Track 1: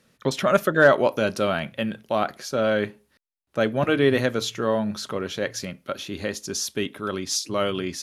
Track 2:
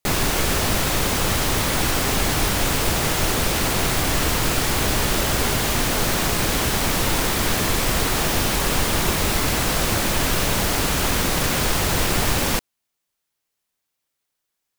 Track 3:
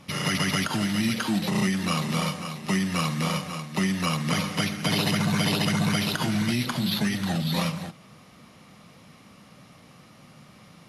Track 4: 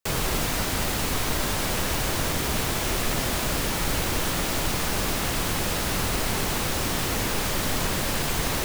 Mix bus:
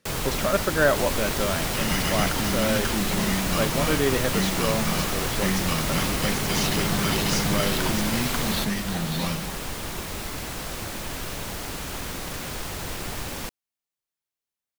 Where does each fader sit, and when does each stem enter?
-4.5, -12.0, -2.5, -2.5 dB; 0.00, 0.90, 1.65, 0.00 s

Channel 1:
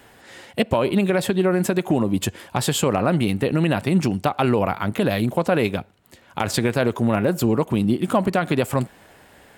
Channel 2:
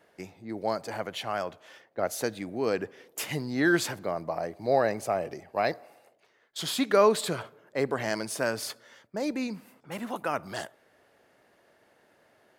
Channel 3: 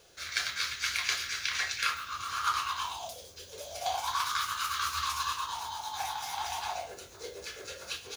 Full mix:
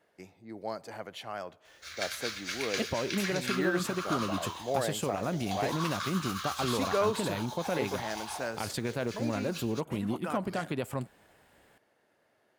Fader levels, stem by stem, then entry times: -13.0, -7.5, -5.0 dB; 2.20, 0.00, 1.65 s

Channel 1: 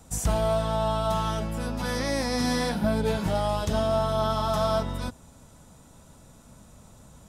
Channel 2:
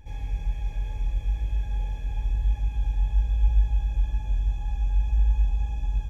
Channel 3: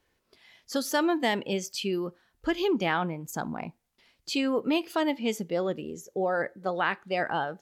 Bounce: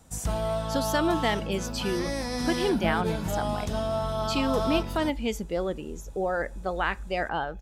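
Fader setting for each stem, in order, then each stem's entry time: -4.0, -18.0, -0.5 dB; 0.00, 1.60, 0.00 s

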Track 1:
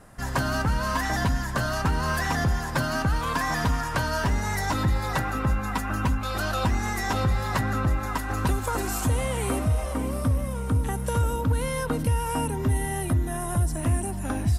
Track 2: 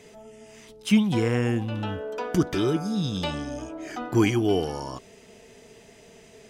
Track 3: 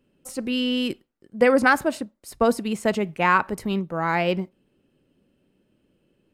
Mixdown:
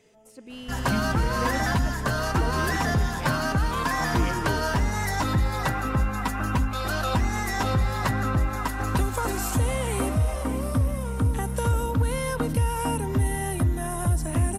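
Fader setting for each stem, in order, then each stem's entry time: +0.5, -10.5, -16.0 dB; 0.50, 0.00, 0.00 s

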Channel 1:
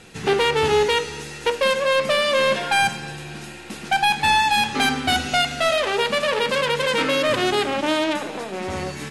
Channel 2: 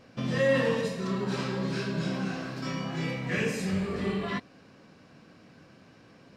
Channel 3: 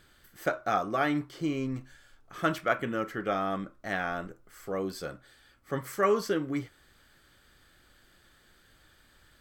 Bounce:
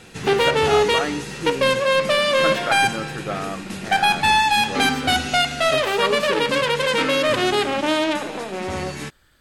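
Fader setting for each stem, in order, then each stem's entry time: +1.0, -7.5, +1.5 dB; 0.00, 0.00, 0.00 s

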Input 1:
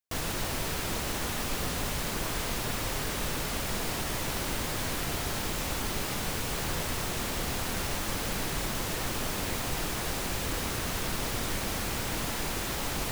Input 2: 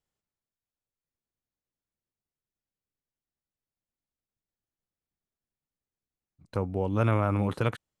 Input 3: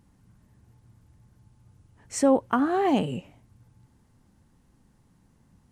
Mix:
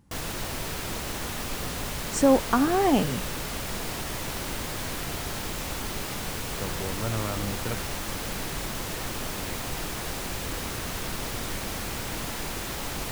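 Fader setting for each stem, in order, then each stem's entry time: -0.5, -6.5, +1.0 dB; 0.00, 0.05, 0.00 s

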